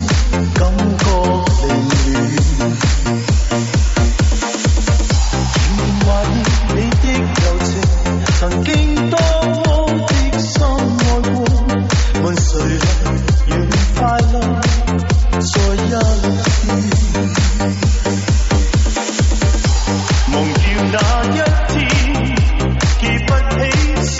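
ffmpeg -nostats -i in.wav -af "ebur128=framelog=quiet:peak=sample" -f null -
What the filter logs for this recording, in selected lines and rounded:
Integrated loudness:
  I:         -14.9 LUFS
  Threshold: -24.9 LUFS
Loudness range:
  LRA:         0.7 LU
  Threshold: -34.9 LUFS
  LRA low:   -15.3 LUFS
  LRA high:  -14.6 LUFS
Sample peak:
  Peak:       -5.3 dBFS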